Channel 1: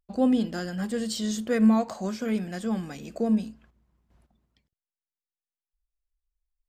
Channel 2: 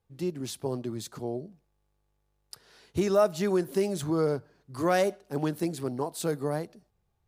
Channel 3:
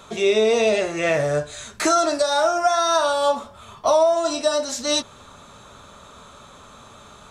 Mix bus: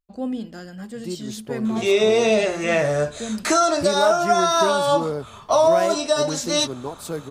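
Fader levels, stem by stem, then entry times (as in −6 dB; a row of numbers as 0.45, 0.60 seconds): −5.0, 0.0, +0.5 decibels; 0.00, 0.85, 1.65 seconds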